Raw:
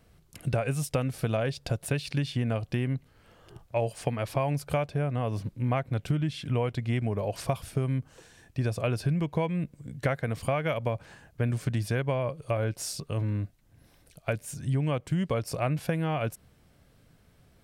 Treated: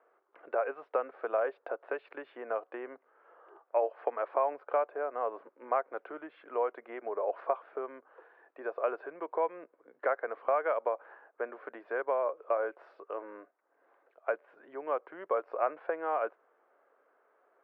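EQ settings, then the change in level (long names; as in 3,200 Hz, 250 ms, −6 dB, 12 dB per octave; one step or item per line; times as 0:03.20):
Butterworth high-pass 390 Hz 36 dB per octave
low-pass with resonance 1,300 Hz, resonance Q 2
high-frequency loss of the air 450 metres
0.0 dB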